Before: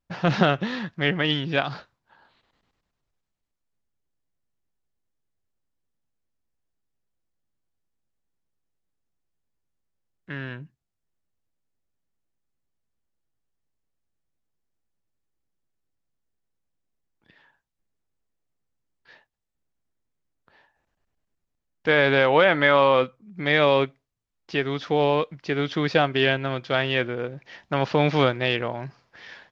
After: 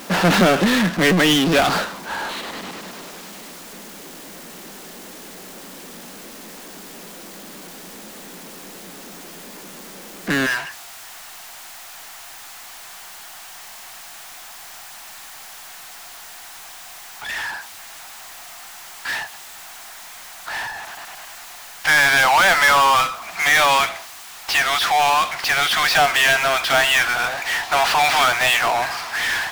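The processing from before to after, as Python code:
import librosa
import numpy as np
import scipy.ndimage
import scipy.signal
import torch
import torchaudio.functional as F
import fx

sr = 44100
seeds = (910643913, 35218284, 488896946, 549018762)

y = fx.ellip_highpass(x, sr, hz=fx.steps((0.0, 180.0), (10.45, 700.0)), order=4, stop_db=40)
y = fx.power_curve(y, sr, exponent=0.35)
y = y * librosa.db_to_amplitude(-2.0)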